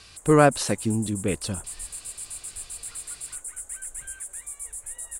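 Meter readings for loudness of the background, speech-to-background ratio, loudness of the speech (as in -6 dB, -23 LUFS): -35.0 LUFS, 12.0 dB, -23.0 LUFS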